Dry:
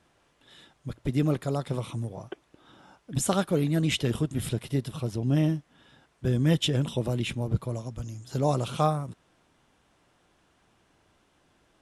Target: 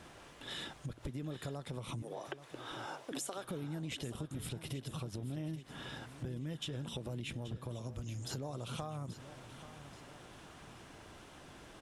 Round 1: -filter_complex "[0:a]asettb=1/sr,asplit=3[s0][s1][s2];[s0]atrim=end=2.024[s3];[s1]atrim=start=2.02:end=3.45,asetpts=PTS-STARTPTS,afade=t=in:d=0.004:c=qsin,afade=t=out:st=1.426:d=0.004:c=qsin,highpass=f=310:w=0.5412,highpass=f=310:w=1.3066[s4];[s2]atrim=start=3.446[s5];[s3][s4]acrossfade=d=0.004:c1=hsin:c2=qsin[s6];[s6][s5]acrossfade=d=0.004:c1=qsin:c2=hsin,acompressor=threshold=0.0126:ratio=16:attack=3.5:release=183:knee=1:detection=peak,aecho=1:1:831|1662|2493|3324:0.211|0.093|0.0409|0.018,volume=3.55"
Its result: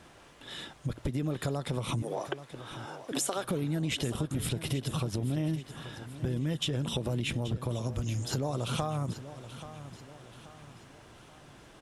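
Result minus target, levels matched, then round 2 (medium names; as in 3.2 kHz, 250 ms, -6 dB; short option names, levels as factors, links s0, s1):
compression: peak gain reduction -10 dB
-filter_complex "[0:a]asettb=1/sr,asplit=3[s0][s1][s2];[s0]atrim=end=2.024[s3];[s1]atrim=start=2.02:end=3.45,asetpts=PTS-STARTPTS,afade=t=in:d=0.004:c=qsin,afade=t=out:st=1.426:d=0.004:c=qsin,highpass=f=310:w=0.5412,highpass=f=310:w=1.3066[s4];[s2]atrim=start=3.446[s5];[s3][s4]acrossfade=d=0.004:c1=hsin:c2=qsin[s6];[s6][s5]acrossfade=d=0.004:c1=qsin:c2=hsin,acompressor=threshold=0.00376:ratio=16:attack=3.5:release=183:knee=1:detection=peak,aecho=1:1:831|1662|2493|3324:0.211|0.093|0.0409|0.018,volume=3.55"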